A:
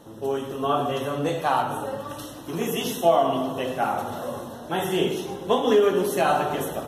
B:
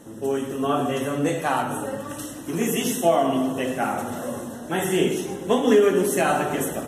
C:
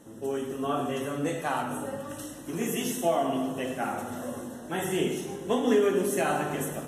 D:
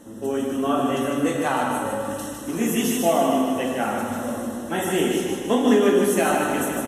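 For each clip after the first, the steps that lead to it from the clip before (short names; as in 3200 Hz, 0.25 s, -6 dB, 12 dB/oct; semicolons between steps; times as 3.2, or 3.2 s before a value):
graphic EQ 250/1000/2000/4000/8000 Hz +6/-4/+7/-7/+11 dB
resonator 50 Hz, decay 1 s, harmonics all, mix 60%
feedback echo 0.154 s, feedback 54%, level -5 dB; on a send at -18 dB: reverb RT60 0.20 s, pre-delay 3 ms; on the sum: gain +5.5 dB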